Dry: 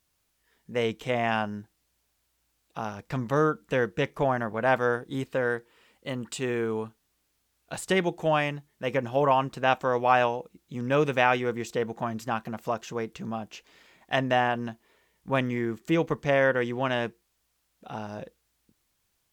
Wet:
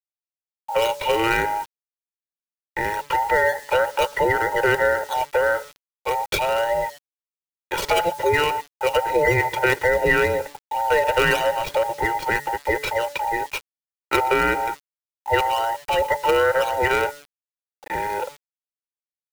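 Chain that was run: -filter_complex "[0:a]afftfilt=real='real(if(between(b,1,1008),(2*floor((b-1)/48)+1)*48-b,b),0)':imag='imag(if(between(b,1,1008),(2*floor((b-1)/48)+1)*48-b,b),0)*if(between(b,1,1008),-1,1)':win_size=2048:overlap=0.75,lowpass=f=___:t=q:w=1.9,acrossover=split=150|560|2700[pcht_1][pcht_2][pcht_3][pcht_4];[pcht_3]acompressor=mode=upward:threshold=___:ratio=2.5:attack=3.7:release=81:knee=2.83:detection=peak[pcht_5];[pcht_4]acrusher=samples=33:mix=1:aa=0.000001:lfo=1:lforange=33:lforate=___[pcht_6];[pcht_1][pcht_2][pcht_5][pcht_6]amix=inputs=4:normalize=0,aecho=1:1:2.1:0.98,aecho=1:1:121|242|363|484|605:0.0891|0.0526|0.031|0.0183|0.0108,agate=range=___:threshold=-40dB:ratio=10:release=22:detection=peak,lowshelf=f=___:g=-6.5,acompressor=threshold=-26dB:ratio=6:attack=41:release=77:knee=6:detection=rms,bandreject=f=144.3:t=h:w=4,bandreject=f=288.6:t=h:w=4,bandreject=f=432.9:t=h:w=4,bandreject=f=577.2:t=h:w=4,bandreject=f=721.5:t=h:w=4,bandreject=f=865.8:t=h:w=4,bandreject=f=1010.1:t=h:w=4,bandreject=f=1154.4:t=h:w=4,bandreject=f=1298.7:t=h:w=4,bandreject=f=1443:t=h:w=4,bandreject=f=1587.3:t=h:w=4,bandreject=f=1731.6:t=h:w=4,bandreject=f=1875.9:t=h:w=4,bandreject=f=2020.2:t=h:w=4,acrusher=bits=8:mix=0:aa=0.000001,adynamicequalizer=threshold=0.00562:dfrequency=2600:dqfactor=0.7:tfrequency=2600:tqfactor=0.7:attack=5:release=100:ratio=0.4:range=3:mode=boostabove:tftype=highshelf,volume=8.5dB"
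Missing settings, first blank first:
6500, -31dB, 1.9, -58dB, 500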